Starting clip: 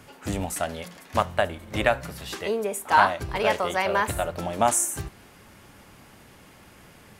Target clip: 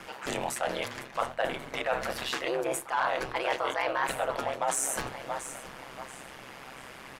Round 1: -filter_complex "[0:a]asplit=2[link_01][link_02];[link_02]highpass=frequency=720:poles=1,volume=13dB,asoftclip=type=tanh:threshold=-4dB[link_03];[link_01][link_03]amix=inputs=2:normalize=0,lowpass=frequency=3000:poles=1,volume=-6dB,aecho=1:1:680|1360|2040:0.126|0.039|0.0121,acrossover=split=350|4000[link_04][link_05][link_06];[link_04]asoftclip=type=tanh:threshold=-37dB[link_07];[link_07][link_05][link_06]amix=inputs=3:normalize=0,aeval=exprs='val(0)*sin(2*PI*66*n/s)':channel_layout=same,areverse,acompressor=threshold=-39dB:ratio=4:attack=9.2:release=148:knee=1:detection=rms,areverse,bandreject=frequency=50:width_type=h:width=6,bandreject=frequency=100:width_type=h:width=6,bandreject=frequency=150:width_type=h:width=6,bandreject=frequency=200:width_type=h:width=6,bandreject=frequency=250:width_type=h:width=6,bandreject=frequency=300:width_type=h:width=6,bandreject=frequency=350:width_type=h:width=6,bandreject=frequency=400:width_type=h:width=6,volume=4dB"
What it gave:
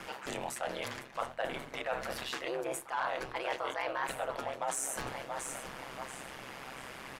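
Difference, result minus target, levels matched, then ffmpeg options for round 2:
downward compressor: peak gain reduction +6 dB
-filter_complex "[0:a]asplit=2[link_01][link_02];[link_02]highpass=frequency=720:poles=1,volume=13dB,asoftclip=type=tanh:threshold=-4dB[link_03];[link_01][link_03]amix=inputs=2:normalize=0,lowpass=frequency=3000:poles=1,volume=-6dB,aecho=1:1:680|1360|2040:0.126|0.039|0.0121,acrossover=split=350|4000[link_04][link_05][link_06];[link_04]asoftclip=type=tanh:threshold=-37dB[link_07];[link_07][link_05][link_06]amix=inputs=3:normalize=0,aeval=exprs='val(0)*sin(2*PI*66*n/s)':channel_layout=same,areverse,acompressor=threshold=-31dB:ratio=4:attack=9.2:release=148:knee=1:detection=rms,areverse,bandreject=frequency=50:width_type=h:width=6,bandreject=frequency=100:width_type=h:width=6,bandreject=frequency=150:width_type=h:width=6,bandreject=frequency=200:width_type=h:width=6,bandreject=frequency=250:width_type=h:width=6,bandreject=frequency=300:width_type=h:width=6,bandreject=frequency=350:width_type=h:width=6,bandreject=frequency=400:width_type=h:width=6,volume=4dB"

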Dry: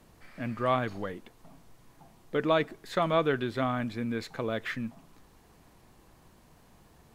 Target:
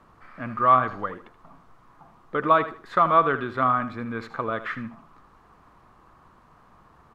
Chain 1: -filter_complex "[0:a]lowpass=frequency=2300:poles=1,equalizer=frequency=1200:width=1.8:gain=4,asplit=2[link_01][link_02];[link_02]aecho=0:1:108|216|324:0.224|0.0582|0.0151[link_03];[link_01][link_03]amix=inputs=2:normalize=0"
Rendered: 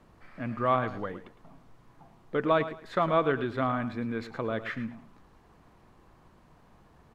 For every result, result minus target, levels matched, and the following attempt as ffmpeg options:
echo 30 ms late; 1,000 Hz band −3.5 dB
-filter_complex "[0:a]lowpass=frequency=2300:poles=1,equalizer=frequency=1200:width=1.8:gain=4,asplit=2[link_01][link_02];[link_02]aecho=0:1:78|156|234:0.224|0.0582|0.0151[link_03];[link_01][link_03]amix=inputs=2:normalize=0"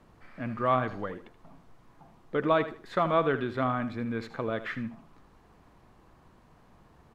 1,000 Hz band −3.0 dB
-filter_complex "[0:a]lowpass=frequency=2300:poles=1,equalizer=frequency=1200:width=1.8:gain=15.5,asplit=2[link_01][link_02];[link_02]aecho=0:1:78|156|234:0.224|0.0582|0.0151[link_03];[link_01][link_03]amix=inputs=2:normalize=0"

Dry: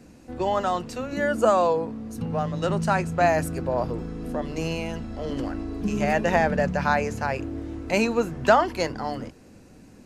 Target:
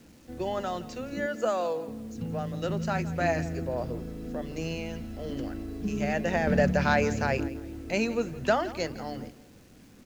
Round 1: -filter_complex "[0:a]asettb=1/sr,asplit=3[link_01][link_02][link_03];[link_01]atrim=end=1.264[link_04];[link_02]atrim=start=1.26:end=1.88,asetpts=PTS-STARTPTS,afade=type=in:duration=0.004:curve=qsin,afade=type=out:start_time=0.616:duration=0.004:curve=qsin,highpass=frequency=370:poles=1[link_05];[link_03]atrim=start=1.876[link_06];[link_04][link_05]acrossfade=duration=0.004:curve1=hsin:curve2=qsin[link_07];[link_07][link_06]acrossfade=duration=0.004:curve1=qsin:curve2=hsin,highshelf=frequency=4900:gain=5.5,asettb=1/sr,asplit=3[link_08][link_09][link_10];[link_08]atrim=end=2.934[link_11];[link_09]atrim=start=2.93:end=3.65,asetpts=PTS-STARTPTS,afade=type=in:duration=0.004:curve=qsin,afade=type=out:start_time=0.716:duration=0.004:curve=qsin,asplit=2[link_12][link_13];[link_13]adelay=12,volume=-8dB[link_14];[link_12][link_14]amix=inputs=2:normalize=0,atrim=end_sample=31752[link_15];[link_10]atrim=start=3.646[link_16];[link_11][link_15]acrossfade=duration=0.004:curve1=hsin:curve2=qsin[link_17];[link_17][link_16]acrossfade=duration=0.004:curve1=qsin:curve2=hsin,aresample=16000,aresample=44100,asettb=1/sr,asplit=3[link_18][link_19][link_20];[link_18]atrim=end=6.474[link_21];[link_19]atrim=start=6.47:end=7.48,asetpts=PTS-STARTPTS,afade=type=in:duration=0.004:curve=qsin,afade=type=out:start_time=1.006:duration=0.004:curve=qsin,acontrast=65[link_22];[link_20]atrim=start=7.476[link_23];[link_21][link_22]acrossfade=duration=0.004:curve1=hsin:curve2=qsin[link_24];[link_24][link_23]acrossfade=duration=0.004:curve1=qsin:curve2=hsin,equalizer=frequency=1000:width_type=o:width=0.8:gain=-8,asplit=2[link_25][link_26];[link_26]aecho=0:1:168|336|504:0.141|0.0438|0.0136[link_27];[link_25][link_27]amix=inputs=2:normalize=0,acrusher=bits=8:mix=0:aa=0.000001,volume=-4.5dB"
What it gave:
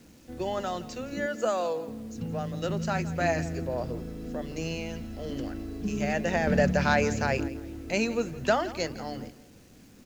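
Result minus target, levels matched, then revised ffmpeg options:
8,000 Hz band +3.5 dB
-filter_complex "[0:a]asettb=1/sr,asplit=3[link_01][link_02][link_03];[link_01]atrim=end=1.264[link_04];[link_02]atrim=start=1.26:end=1.88,asetpts=PTS-STARTPTS,afade=type=in:duration=0.004:curve=qsin,afade=type=out:start_time=0.616:duration=0.004:curve=qsin,highpass=frequency=370:poles=1[link_05];[link_03]atrim=start=1.876[link_06];[link_04][link_05]acrossfade=duration=0.004:curve1=hsin:curve2=qsin[link_07];[link_07][link_06]acrossfade=duration=0.004:curve1=qsin:curve2=hsin,asettb=1/sr,asplit=3[link_08][link_09][link_10];[link_08]atrim=end=2.934[link_11];[link_09]atrim=start=2.93:end=3.65,asetpts=PTS-STARTPTS,afade=type=in:duration=0.004:curve=qsin,afade=type=out:start_time=0.716:duration=0.004:curve=qsin,asplit=2[link_12][link_13];[link_13]adelay=12,volume=-8dB[link_14];[link_12][link_14]amix=inputs=2:normalize=0,atrim=end_sample=31752[link_15];[link_10]atrim=start=3.646[link_16];[link_11][link_15]acrossfade=duration=0.004:curve1=hsin:curve2=qsin[link_17];[link_17][link_16]acrossfade=duration=0.004:curve1=qsin:curve2=hsin,aresample=16000,aresample=44100,asettb=1/sr,asplit=3[link_18][link_19][link_20];[link_18]atrim=end=6.474[link_21];[link_19]atrim=start=6.47:end=7.48,asetpts=PTS-STARTPTS,afade=type=in:duration=0.004:curve=qsin,afade=type=out:start_time=1.006:duration=0.004:curve=qsin,acontrast=65[link_22];[link_20]atrim=start=7.476[link_23];[link_21][link_22]acrossfade=duration=0.004:curve1=hsin:curve2=qsin[link_24];[link_24][link_23]acrossfade=duration=0.004:curve1=qsin:curve2=hsin,equalizer=frequency=1000:width_type=o:width=0.8:gain=-8,asplit=2[link_25][link_26];[link_26]aecho=0:1:168|336|504:0.141|0.0438|0.0136[link_27];[link_25][link_27]amix=inputs=2:normalize=0,acrusher=bits=8:mix=0:aa=0.000001,volume=-4.5dB"

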